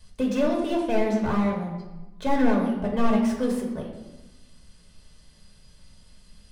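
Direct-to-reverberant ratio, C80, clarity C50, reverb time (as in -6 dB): -1.5 dB, 6.5 dB, 4.5 dB, 1.1 s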